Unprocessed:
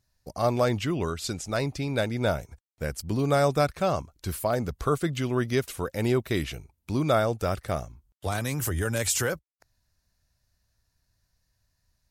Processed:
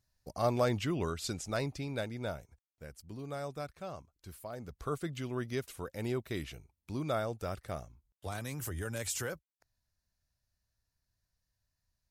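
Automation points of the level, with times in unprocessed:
0:01.48 −5.5 dB
0:02.85 −17.5 dB
0:04.52 −17.5 dB
0:04.93 −10.5 dB

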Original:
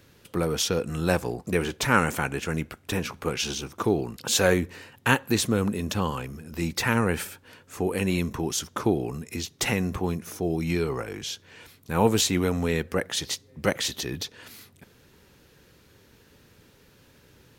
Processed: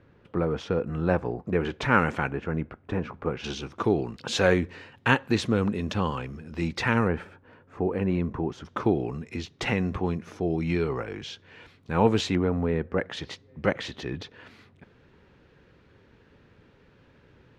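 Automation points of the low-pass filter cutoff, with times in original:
1,600 Hz
from 0:01.65 2,700 Hz
from 0:02.31 1,400 Hz
from 0:03.44 3,700 Hz
from 0:07.08 1,400 Hz
from 0:08.65 3,100 Hz
from 0:12.35 1,300 Hz
from 0:12.98 2,400 Hz

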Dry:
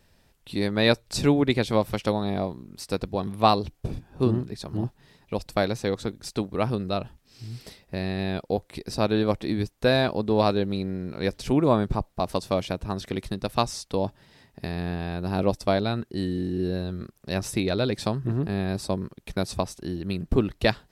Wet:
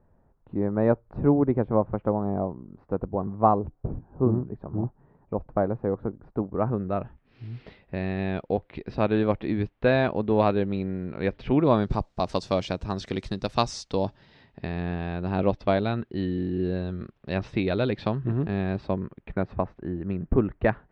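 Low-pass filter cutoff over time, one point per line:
low-pass filter 24 dB per octave
0:06.44 1,200 Hz
0:07.45 2,900 Hz
0:11.49 2,900 Hz
0:11.96 6,800 Hz
0:13.86 6,800 Hz
0:14.68 3,300 Hz
0:18.59 3,300 Hz
0:19.57 1,900 Hz

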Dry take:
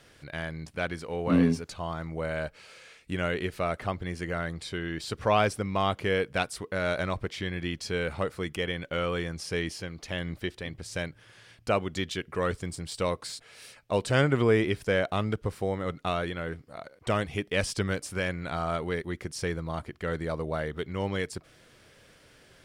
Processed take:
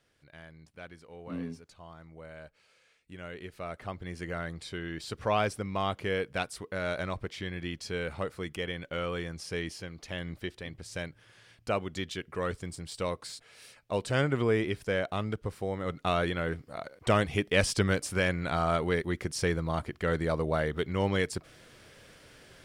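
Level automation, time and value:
0:03.11 −15 dB
0:04.23 −4 dB
0:15.67 −4 dB
0:16.23 +2.5 dB

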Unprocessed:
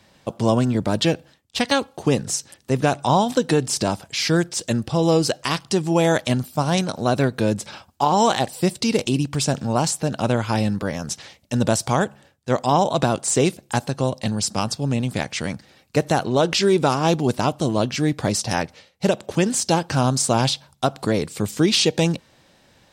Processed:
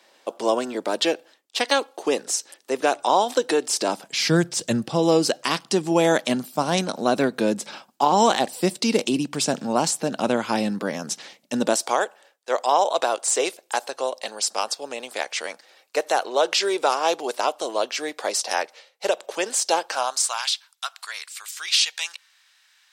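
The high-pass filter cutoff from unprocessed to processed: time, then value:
high-pass filter 24 dB per octave
0:03.76 340 Hz
0:04.52 94 Hz
0:05.03 200 Hz
0:11.53 200 Hz
0:12.04 450 Hz
0:19.83 450 Hz
0:20.49 1,300 Hz

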